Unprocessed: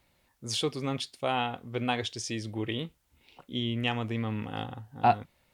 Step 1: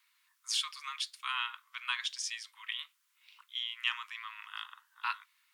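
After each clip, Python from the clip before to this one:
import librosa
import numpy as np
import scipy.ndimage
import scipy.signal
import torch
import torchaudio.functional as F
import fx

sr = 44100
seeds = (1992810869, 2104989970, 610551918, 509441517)

y = scipy.signal.sosfilt(scipy.signal.butter(16, 1000.0, 'highpass', fs=sr, output='sos'), x)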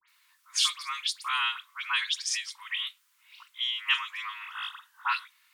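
y = fx.dispersion(x, sr, late='highs', ms=83.0, hz=2400.0)
y = F.gain(torch.from_numpy(y), 7.0).numpy()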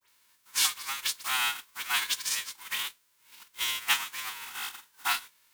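y = fx.envelope_flatten(x, sr, power=0.3)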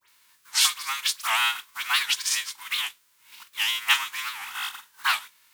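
y = fx.envelope_sharpen(x, sr, power=1.5)
y = fx.record_warp(y, sr, rpm=78.0, depth_cents=250.0)
y = F.gain(torch.from_numpy(y), 5.0).numpy()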